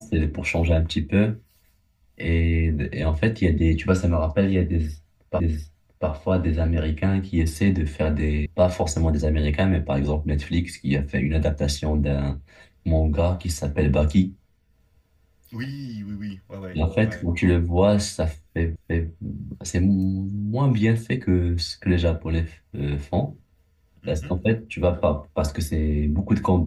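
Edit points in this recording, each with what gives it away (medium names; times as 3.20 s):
5.40 s: repeat of the last 0.69 s
8.46 s: sound stops dead
18.76 s: repeat of the last 0.34 s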